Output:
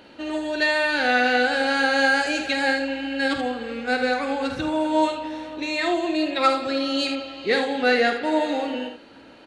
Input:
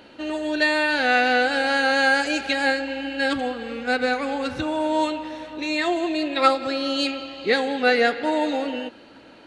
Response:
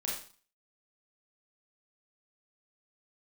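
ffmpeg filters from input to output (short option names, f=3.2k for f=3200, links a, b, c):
-filter_complex "[0:a]acontrast=26,asplit=2[a][b];[b]aecho=0:1:48|77:0.355|0.355[c];[a][c]amix=inputs=2:normalize=0,volume=-6dB"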